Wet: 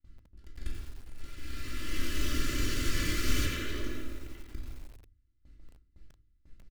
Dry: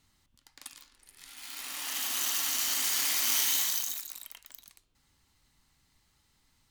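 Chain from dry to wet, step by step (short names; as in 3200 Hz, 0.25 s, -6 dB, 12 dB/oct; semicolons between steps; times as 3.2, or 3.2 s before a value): minimum comb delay 3 ms; Chebyshev band-stop 500–1300 Hz, order 2; RIAA curve playback; gate with hold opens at -49 dBFS; 3.45–4.54 tone controls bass -10 dB, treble -12 dB; echo 0.106 s -18 dB; shoebox room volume 530 m³, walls furnished, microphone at 2.5 m; lo-fi delay 87 ms, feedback 55%, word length 8-bit, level -8.5 dB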